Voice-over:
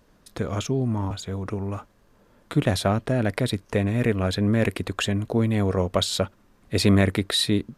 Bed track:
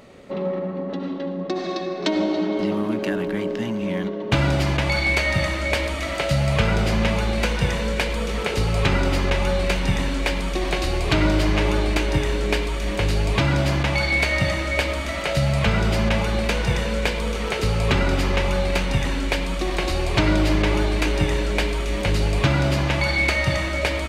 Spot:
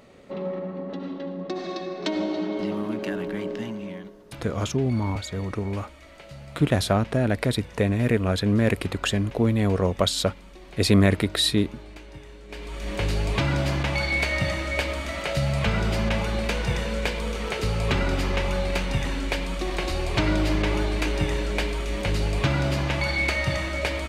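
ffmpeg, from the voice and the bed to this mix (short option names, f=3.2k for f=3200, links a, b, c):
-filter_complex "[0:a]adelay=4050,volume=0.5dB[a];[1:a]volume=13dB,afade=t=out:st=3.58:d=0.59:silence=0.141254,afade=t=in:st=12.48:d=0.55:silence=0.125893[b];[a][b]amix=inputs=2:normalize=0"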